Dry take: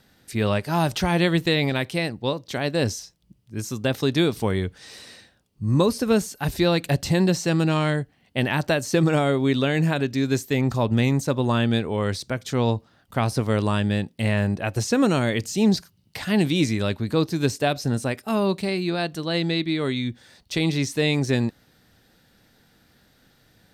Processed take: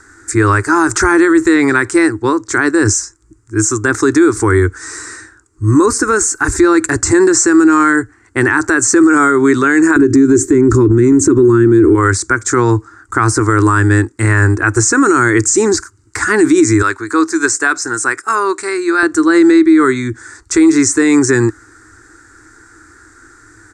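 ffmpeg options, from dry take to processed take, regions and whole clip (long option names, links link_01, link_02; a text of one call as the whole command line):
ffmpeg -i in.wav -filter_complex "[0:a]asettb=1/sr,asplit=3[link_01][link_02][link_03];[link_01]atrim=end=9.964[link_04];[link_02]atrim=start=9.96:end=11.95,asetpts=PTS-STARTPTS,afade=type=in:duration=0.004:curve=qsin,afade=type=out:start_time=1.986:duration=0.004:curve=qsin,lowshelf=frequency=480:width_type=q:width=3:gain=10.5,acompressor=threshold=-12dB:ratio=6:attack=3.2:release=140:knee=1:detection=peak[link_05];[link_03]atrim=start=11.946[link_06];[link_04][link_05]acrossfade=duration=0.004:curve1=hsin:curve2=qsin[link_07];[link_07][link_06]acrossfade=duration=0.004:curve1=qsin:curve2=hsin,asettb=1/sr,asplit=3[link_08][link_09][link_10];[link_08]atrim=end=16.824[link_11];[link_09]atrim=start=16.82:end=19.03,asetpts=PTS-STARTPTS,afade=type=in:duration=0.004:curve=qsin,afade=type=out:start_time=2.206:duration=0.004:curve=qsin,highpass=frequency=930:poles=1,highshelf=frequency=10000:gain=-5[link_12];[link_10]atrim=start=19.026[link_13];[link_11][link_12]acrossfade=duration=0.004:curve1=hsin:curve2=qsin[link_14];[link_14][link_13]acrossfade=duration=0.004:curve1=qsin:curve2=hsin,firequalizer=gain_entry='entry(110,0);entry(160,-29);entry(320,10);entry(580,-18);entry(1000,3);entry(1400,12);entry(3000,-21);entry(7400,13);entry(13000,-24)':delay=0.05:min_phase=1,alimiter=level_in=15.5dB:limit=-1dB:release=50:level=0:latency=1,volume=-1dB" out.wav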